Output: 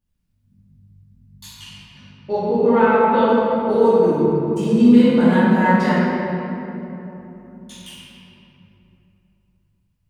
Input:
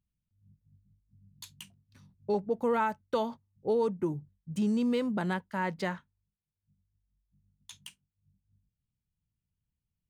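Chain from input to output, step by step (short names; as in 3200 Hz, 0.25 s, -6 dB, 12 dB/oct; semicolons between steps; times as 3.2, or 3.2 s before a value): 1.52–3.26 LPF 8000 Hz -> 3800 Hz 24 dB/oct; shoebox room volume 180 m³, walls hard, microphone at 2.5 m; gain -1 dB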